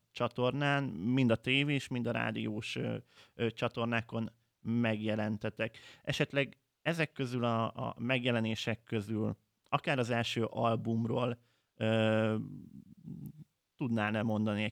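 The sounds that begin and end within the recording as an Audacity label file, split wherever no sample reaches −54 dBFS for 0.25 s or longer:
4.650000	6.530000	sound
6.850000	9.340000	sound
9.660000	11.350000	sound
11.800000	13.420000	sound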